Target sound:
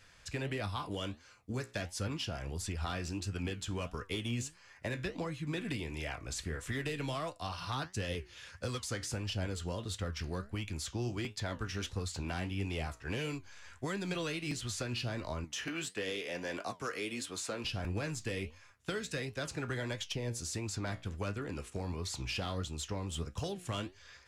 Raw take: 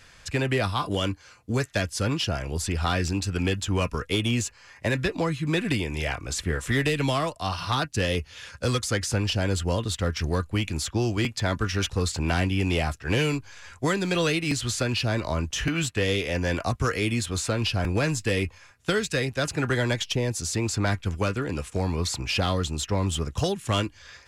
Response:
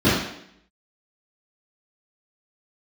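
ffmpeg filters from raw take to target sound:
-filter_complex "[0:a]asettb=1/sr,asplit=3[a][b][c];[a]atrim=end=15.444[d];[b]atrim=start=15.44:end=17.65,asetpts=PTS-STARTPTS,afade=t=in:d=0.004:c=qsin,afade=t=out:st=2.206:d=0.004:c=qsin,highpass=260[e];[c]atrim=start=17.646[f];[d][e]acrossfade=d=0.004:c1=hsin:c2=qsin[g];[g][f]acrossfade=d=0.004:c1=qsin:c2=hsin,acompressor=threshold=-26dB:ratio=2.5,flanger=delay=9.6:depth=7.5:regen=72:speed=1.5:shape=sinusoidal,volume=-4.5dB"

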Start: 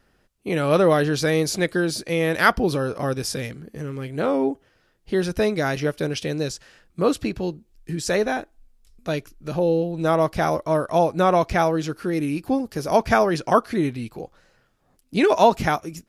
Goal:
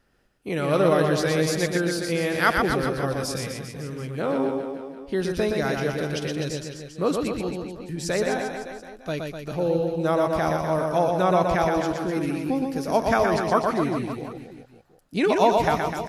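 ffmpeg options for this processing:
-af "aecho=1:1:120|252|397.2|556.9|732.6:0.631|0.398|0.251|0.158|0.1,volume=-4dB"

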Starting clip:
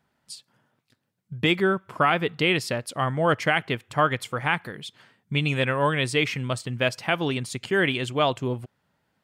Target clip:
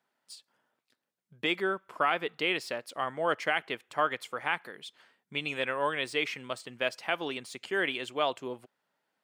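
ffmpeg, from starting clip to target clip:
-filter_complex "[0:a]highpass=350,acrossover=split=5000[a][b];[b]asoftclip=type=tanh:threshold=-39.5dB[c];[a][c]amix=inputs=2:normalize=0,volume=-6dB"

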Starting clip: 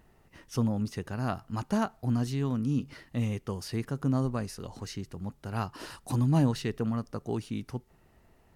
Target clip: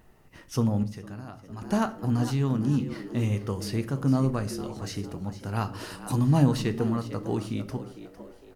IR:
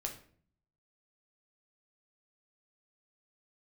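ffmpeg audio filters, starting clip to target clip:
-filter_complex "[0:a]asplit=5[a][b][c][d][e];[b]adelay=455,afreqshift=84,volume=-13.5dB[f];[c]adelay=910,afreqshift=168,volume=-21.2dB[g];[d]adelay=1365,afreqshift=252,volume=-29dB[h];[e]adelay=1820,afreqshift=336,volume=-36.7dB[i];[a][f][g][h][i]amix=inputs=5:normalize=0,asettb=1/sr,asplit=3[j][k][l];[j]atrim=end=0.834[m];[k]atrim=start=0.83:end=1.62,asetpts=PTS-STARTPTS,afade=t=in:d=0.004:c=qsin,afade=t=out:st=0.786:d=0.004:c=qsin,acompressor=threshold=-40dB:ratio=12[n];[l]atrim=start=1.616[o];[m][n]acrossfade=d=0.004:c1=hsin:c2=qsin[p];[p][o]acrossfade=d=0.004:c1=qsin:c2=hsin,asplit=2[q][r];[1:a]atrim=start_sample=2205,highshelf=f=11k:g=6[s];[r][s]afir=irnorm=-1:irlink=0,volume=-1.5dB[t];[q][t]amix=inputs=2:normalize=0,volume=-1.5dB"

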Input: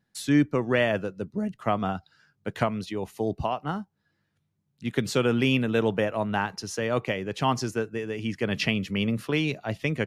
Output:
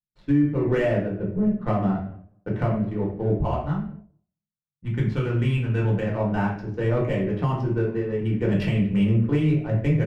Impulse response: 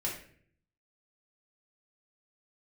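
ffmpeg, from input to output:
-filter_complex "[0:a]asettb=1/sr,asplit=3[a][b][c];[a]atrim=end=3.604[d];[b]atrim=start=3.6:end=6.08,asetpts=PTS-STARTPTS,afade=t=in:d=0.004:c=qsin,afade=t=out:st=2.476:d=0.004:c=qsin,equalizer=f=430:w=0.74:g=-9[e];[c]atrim=start=6.076[f];[d][e]acrossfade=d=0.004:c1=hsin:c2=qsin[g];[g][f]acrossfade=d=0.004:c1=qsin:c2=hsin,aecho=1:1:214|428|642:0.0631|0.0341|0.0184,agate=range=-33dB:threshold=-45dB:ratio=3:detection=peak,adynamicsmooth=sensitivity=5.5:basefreq=750,lowshelf=f=110:g=12[h];[1:a]atrim=start_sample=2205,afade=t=out:st=0.33:d=0.01,atrim=end_sample=14994[i];[h][i]afir=irnorm=-1:irlink=0,alimiter=limit=-11.5dB:level=0:latency=1:release=375,lowpass=f=1.1k:p=1"

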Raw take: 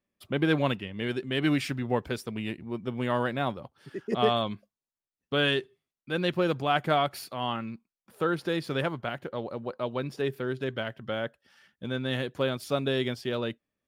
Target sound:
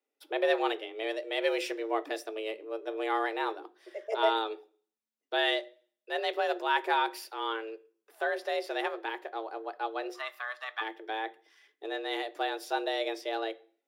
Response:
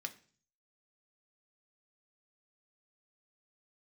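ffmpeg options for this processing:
-filter_complex "[0:a]asplit=3[a][b][c];[a]afade=t=out:st=10.13:d=0.02[d];[b]highpass=f=950:t=q:w=9.5,afade=t=in:st=10.13:d=0.02,afade=t=out:st=10.8:d=0.02[e];[c]afade=t=in:st=10.8:d=0.02[f];[d][e][f]amix=inputs=3:normalize=0,afreqshift=220,asplit=2[g][h];[1:a]atrim=start_sample=2205,lowshelf=f=460:g=6[i];[h][i]afir=irnorm=-1:irlink=0,volume=1.5dB[j];[g][j]amix=inputs=2:normalize=0,volume=-8.5dB"

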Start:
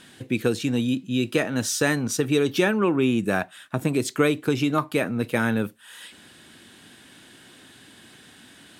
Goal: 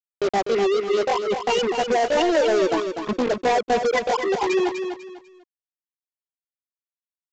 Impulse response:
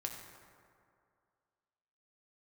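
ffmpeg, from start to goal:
-filter_complex "[0:a]lowpass=2.6k,afftfilt=real='re*gte(hypot(re,im),0.398)':imag='im*gte(hypot(re,im),0.398)':win_size=1024:overlap=0.75,highpass=f=85:w=0.5412,highpass=f=85:w=1.3066,acrossover=split=150[a][b];[a]acompressor=mode=upward:threshold=-47dB:ratio=2.5[c];[c][b]amix=inputs=2:normalize=0,asetrate=72056,aresample=44100,atempo=0.612027,aresample=16000,acrusher=bits=4:mix=0:aa=0.5,aresample=44100,atempo=1.2,asoftclip=type=tanh:threshold=-25.5dB,aecho=1:1:248|496|744:0.447|0.125|0.035,volume=8.5dB" -ar 16000 -c:a pcm_mulaw

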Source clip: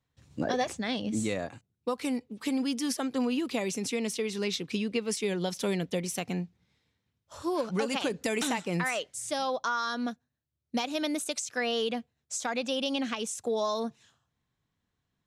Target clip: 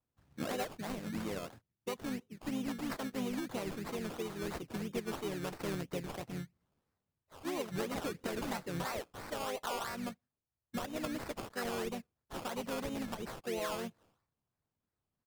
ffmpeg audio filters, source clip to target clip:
-filter_complex "[0:a]lowshelf=f=78:g=-4,acrusher=samples=18:mix=1:aa=0.000001:lfo=1:lforange=10.8:lforate=3,asplit=3[a][b][c];[b]asetrate=22050,aresample=44100,atempo=2,volume=-17dB[d];[c]asetrate=35002,aresample=44100,atempo=1.25992,volume=-5dB[e];[a][d][e]amix=inputs=3:normalize=0,volume=-9dB"

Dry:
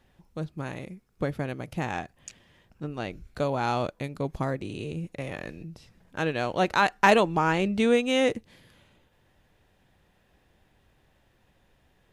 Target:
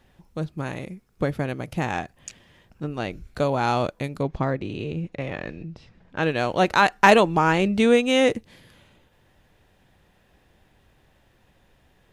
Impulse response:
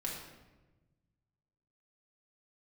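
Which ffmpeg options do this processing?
-filter_complex "[0:a]asettb=1/sr,asplit=3[a][b][c];[a]atrim=end=4.234[d];[b]atrim=start=4.23:end=6.23,asetpts=PTS-STARTPTS,afade=t=in:d=0.004:c=qsin,afade=t=out:st=1.996:d=0.004:c=qsin,lowpass=4k[e];[c]atrim=start=6.226[f];[d][e]acrossfade=d=0.004:c1=hsin:c2=qsin[g];[g][f]acrossfade=d=0.004:c1=qsin:c2=hsin,volume=4.5dB"

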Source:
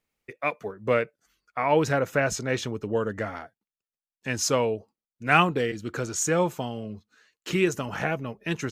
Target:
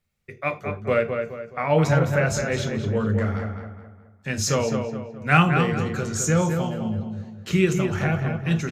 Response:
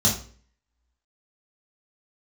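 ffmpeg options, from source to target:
-filter_complex "[0:a]lowshelf=f=120:g=8,asplit=2[a][b];[b]adelay=211,lowpass=f=2.7k:p=1,volume=-5.5dB,asplit=2[c][d];[d]adelay=211,lowpass=f=2.7k:p=1,volume=0.41,asplit=2[e][f];[f]adelay=211,lowpass=f=2.7k:p=1,volume=0.41,asplit=2[g][h];[h]adelay=211,lowpass=f=2.7k:p=1,volume=0.41,asplit=2[i][j];[j]adelay=211,lowpass=f=2.7k:p=1,volume=0.41[k];[a][c][e][g][i][k]amix=inputs=6:normalize=0,asplit=2[l][m];[1:a]atrim=start_sample=2205,afade=t=out:st=0.16:d=0.01,atrim=end_sample=7497[n];[m][n]afir=irnorm=-1:irlink=0,volume=-19.5dB[o];[l][o]amix=inputs=2:normalize=0"

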